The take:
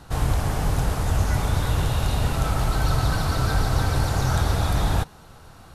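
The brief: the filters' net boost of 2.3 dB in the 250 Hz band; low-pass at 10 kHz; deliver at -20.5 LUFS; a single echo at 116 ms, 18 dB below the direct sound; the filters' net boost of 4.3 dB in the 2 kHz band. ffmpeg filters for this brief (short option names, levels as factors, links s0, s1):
-af "lowpass=10000,equalizer=f=250:t=o:g=3.5,equalizer=f=2000:t=o:g=6,aecho=1:1:116:0.126,volume=1.26"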